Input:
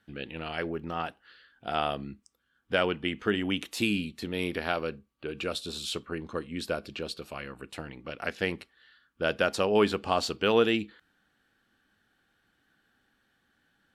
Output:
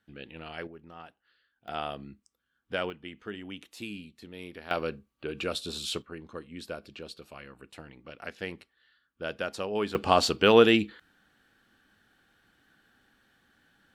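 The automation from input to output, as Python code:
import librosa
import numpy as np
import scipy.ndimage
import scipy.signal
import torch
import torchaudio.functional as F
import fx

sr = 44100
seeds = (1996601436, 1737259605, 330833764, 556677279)

y = fx.gain(x, sr, db=fx.steps((0.0, -6.0), (0.67, -14.0), (1.68, -5.5), (2.9, -12.0), (4.71, 0.5), (6.02, -7.0), (9.95, 5.0)))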